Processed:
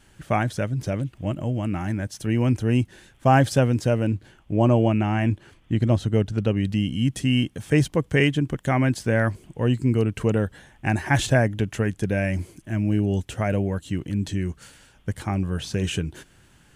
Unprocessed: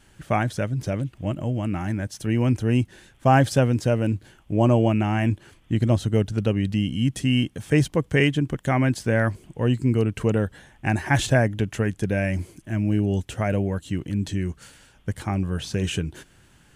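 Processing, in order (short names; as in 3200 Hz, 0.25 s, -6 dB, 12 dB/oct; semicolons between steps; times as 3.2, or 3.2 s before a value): 4.04–6.57 high shelf 7000 Hz -8 dB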